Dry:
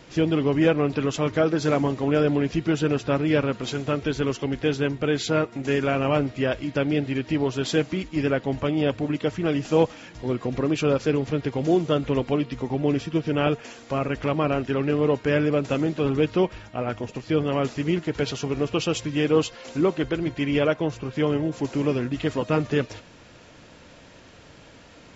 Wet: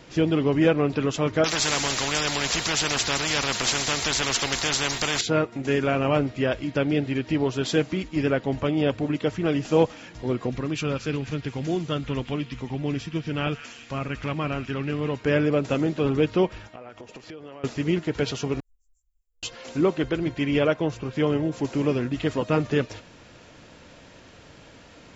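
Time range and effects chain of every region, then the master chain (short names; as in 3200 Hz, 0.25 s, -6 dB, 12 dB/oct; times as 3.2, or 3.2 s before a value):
1.44–5.21 high shelf 3400 Hz +12 dB + spectral compressor 4:1
10.51–15.21 bell 510 Hz -8.5 dB 2 oct + delay with a stepping band-pass 0.178 s, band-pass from 2000 Hz, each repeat 0.7 oct, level -10 dB
16.67–17.64 tone controls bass -10 dB, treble -1 dB + compressor 12:1, threshold -37 dBFS
18.6–19.43 inverse Chebyshev band-stop 140–3900 Hz, stop band 80 dB + doubler 21 ms -2 dB
whole clip: dry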